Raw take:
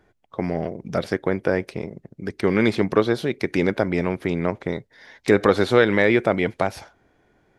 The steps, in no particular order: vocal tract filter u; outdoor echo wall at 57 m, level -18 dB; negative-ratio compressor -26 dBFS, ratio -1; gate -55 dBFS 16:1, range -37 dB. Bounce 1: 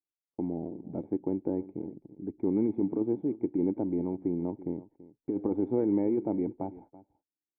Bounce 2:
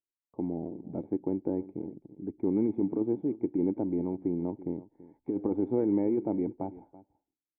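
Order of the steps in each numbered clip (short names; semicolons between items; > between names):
vocal tract filter > negative-ratio compressor > gate > outdoor echo; gate > vocal tract filter > negative-ratio compressor > outdoor echo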